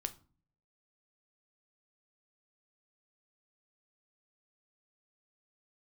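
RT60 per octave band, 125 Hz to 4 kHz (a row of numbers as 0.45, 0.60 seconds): 0.80, 0.70, 0.40, 0.40, 0.30, 0.30 seconds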